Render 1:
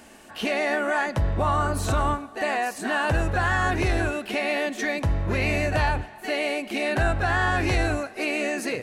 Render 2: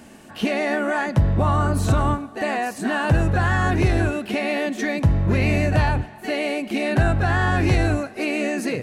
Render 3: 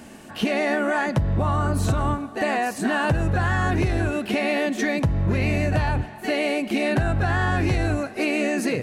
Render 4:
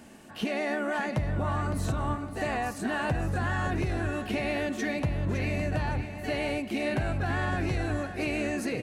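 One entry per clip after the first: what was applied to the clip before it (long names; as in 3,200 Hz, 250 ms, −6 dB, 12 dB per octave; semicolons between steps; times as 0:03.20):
parametric band 150 Hz +10.5 dB 2.1 octaves
downward compressor, threshold −20 dBFS, peak gain reduction 8.5 dB; level +2 dB
repeating echo 561 ms, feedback 31%, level −10 dB; level −7.5 dB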